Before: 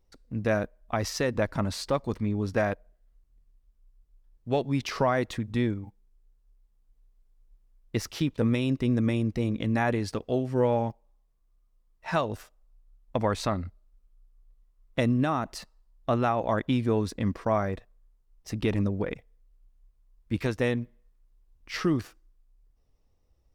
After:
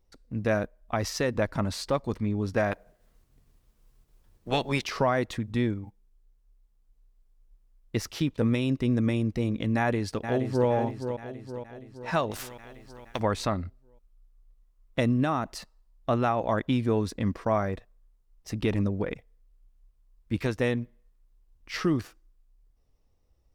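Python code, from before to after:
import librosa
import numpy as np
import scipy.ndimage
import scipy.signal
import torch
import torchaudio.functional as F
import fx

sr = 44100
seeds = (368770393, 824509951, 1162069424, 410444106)

y = fx.spec_clip(x, sr, under_db=18, at=(2.71, 4.83), fade=0.02)
y = fx.echo_throw(y, sr, start_s=9.76, length_s=0.93, ms=470, feedback_pct=55, wet_db=-8.0)
y = fx.spectral_comp(y, sr, ratio=2.0, at=(12.31, 13.2))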